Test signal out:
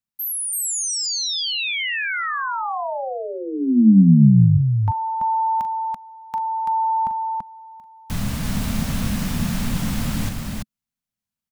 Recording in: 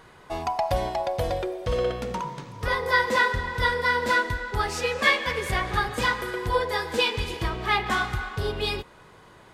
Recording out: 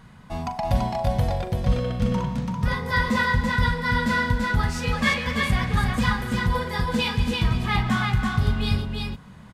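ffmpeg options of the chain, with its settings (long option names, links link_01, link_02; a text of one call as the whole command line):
ffmpeg -i in.wav -filter_complex "[0:a]lowshelf=frequency=280:width_type=q:width=3:gain=9,asplit=2[link_01][link_02];[link_02]aecho=0:1:41|335:0.282|0.708[link_03];[link_01][link_03]amix=inputs=2:normalize=0,volume=-2.5dB" out.wav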